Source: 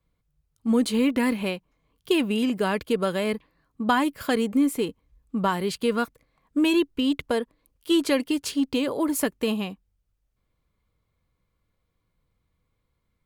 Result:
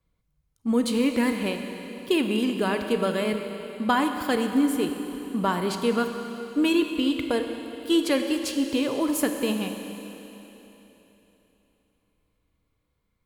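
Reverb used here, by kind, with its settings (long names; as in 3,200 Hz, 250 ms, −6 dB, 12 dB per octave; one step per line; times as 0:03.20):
four-comb reverb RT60 3.5 s, combs from 30 ms, DRR 5.5 dB
level −1 dB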